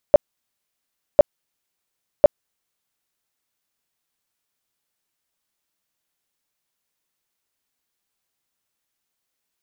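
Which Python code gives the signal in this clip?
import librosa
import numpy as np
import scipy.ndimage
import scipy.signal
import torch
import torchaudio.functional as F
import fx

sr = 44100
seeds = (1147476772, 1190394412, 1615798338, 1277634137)

y = fx.tone_burst(sr, hz=590.0, cycles=11, every_s=1.05, bursts=3, level_db=-4.5)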